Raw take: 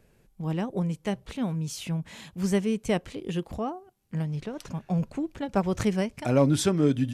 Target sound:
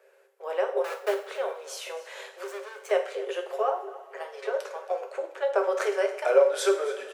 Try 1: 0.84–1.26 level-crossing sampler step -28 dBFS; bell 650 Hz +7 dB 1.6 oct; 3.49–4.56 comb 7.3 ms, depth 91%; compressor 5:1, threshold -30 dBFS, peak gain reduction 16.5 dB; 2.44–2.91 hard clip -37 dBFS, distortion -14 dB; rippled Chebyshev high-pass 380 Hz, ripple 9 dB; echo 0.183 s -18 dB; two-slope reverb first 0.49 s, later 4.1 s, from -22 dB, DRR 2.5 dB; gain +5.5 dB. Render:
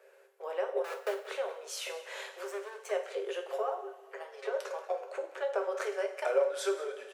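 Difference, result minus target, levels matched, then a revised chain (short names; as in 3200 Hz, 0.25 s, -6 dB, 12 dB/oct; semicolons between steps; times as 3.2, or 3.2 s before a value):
compressor: peak gain reduction +8.5 dB; echo 91 ms early
0.84–1.26 level-crossing sampler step -28 dBFS; bell 650 Hz +7 dB 1.6 oct; 3.49–4.56 comb 7.3 ms, depth 91%; compressor 5:1, threshold -19.5 dBFS, peak gain reduction 8 dB; 2.44–2.91 hard clip -37 dBFS, distortion -11 dB; rippled Chebyshev high-pass 380 Hz, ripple 9 dB; echo 0.274 s -18 dB; two-slope reverb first 0.49 s, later 4.1 s, from -22 dB, DRR 2.5 dB; gain +5.5 dB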